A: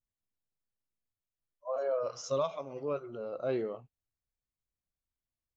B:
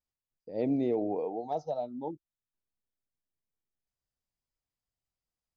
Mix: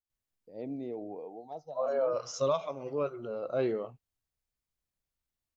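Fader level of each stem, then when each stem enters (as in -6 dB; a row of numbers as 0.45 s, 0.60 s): +2.5 dB, -9.5 dB; 0.10 s, 0.00 s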